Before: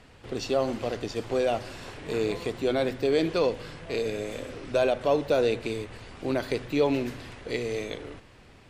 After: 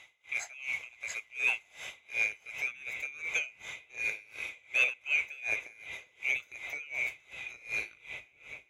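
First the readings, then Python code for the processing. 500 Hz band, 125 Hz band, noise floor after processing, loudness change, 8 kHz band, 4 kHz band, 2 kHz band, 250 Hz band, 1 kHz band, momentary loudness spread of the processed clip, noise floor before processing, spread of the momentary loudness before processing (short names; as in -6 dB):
-27.0 dB, under -25 dB, -65 dBFS, -5.0 dB, 0.0 dB, -7.0 dB, +7.0 dB, under -30 dB, -17.0 dB, 14 LU, -53 dBFS, 13 LU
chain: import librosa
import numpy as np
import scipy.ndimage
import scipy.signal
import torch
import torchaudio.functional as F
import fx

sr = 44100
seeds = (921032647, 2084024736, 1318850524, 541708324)

p1 = fx.band_swap(x, sr, width_hz=2000)
p2 = fx.dynamic_eq(p1, sr, hz=3500.0, q=2.0, threshold_db=-38.0, ratio=4.0, max_db=-5)
p3 = scipy.signal.sosfilt(scipy.signal.butter(2, 67.0, 'highpass', fs=sr, output='sos'), p2)
p4 = fx.peak_eq(p3, sr, hz=220.0, db=-10.5, octaves=1.6)
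p5 = p4 + fx.echo_opening(p4, sr, ms=402, hz=200, octaves=1, feedback_pct=70, wet_db=-6, dry=0)
y = p5 * 10.0 ** (-24 * (0.5 - 0.5 * np.cos(2.0 * np.pi * 2.7 * np.arange(len(p5)) / sr)) / 20.0)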